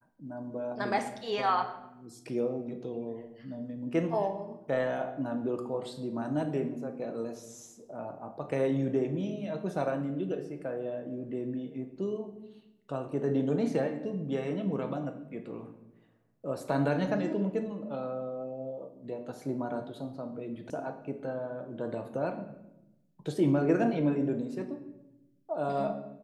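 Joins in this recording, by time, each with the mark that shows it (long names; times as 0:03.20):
0:20.70: cut off before it has died away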